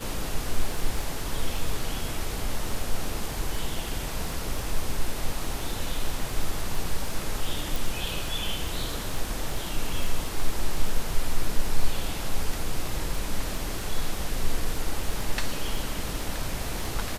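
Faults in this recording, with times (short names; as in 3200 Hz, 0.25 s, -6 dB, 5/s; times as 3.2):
crackle 12/s -28 dBFS
7.76 pop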